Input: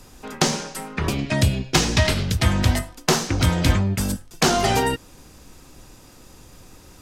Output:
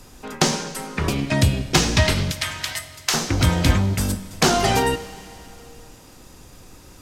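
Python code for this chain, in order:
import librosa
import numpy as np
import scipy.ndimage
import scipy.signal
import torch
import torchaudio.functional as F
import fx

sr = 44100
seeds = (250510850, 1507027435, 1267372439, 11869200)

y = fx.highpass(x, sr, hz=1500.0, slope=12, at=(2.31, 3.14))
y = fx.rev_schroeder(y, sr, rt60_s=2.9, comb_ms=32, drr_db=14.0)
y = y * 10.0 ** (1.0 / 20.0)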